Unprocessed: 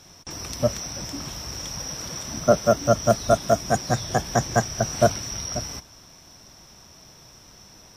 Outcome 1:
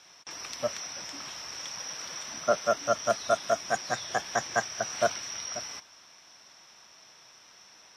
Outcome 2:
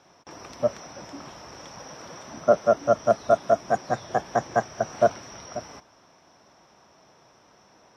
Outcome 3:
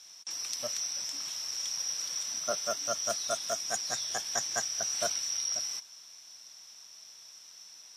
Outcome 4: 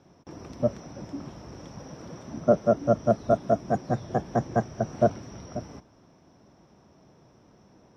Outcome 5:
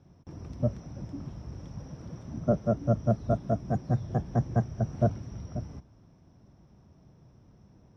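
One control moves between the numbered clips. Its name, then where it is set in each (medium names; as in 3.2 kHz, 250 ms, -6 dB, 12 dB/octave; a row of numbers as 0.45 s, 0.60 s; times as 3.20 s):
band-pass filter, frequency: 2.2 kHz, 770 Hz, 6.1 kHz, 300 Hz, 120 Hz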